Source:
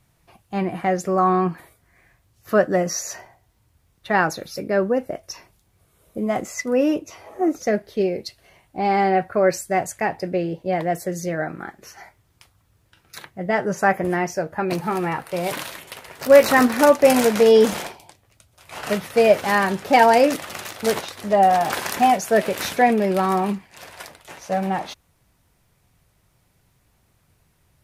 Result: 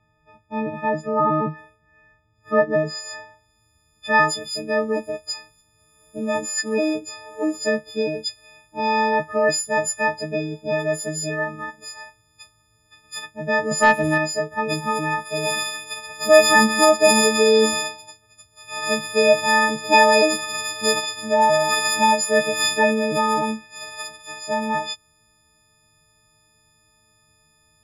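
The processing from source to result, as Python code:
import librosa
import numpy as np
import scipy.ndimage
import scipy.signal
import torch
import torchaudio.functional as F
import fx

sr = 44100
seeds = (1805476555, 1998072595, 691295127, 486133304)

y = fx.freq_snap(x, sr, grid_st=6)
y = fx.leveller(y, sr, passes=1, at=(13.71, 14.18))
y = fx.filter_sweep_lowpass(y, sr, from_hz=1800.0, to_hz=7300.0, start_s=2.71, end_s=3.65, q=0.71)
y = y * 10.0 ** (-2.5 / 20.0)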